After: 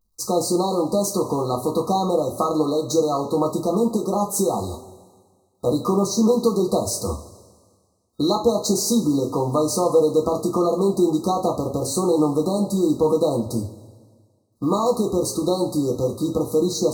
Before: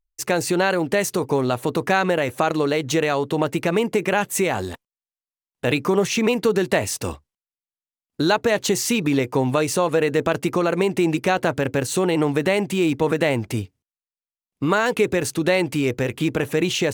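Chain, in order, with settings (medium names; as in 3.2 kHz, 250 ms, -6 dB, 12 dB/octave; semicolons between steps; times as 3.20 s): companding laws mixed up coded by mu; two-slope reverb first 0.27 s, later 1.7 s, from -19 dB, DRR -0.5 dB; FFT band-reject 1.3–3.8 kHz; trim -3 dB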